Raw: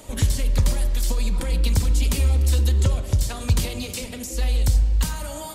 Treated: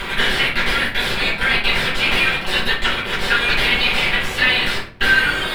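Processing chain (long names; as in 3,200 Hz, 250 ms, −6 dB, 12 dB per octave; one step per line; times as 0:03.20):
Butterworth high-pass 1,400 Hz 96 dB per octave
parametric band 5,900 Hz −3 dB 1.4 octaves
upward compression, threshold −40 dBFS
fuzz pedal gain 53 dB, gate −43 dBFS
high-frequency loss of the air 460 metres
convolution reverb RT60 0.45 s, pre-delay 5 ms, DRR −6.5 dB
level +2.5 dB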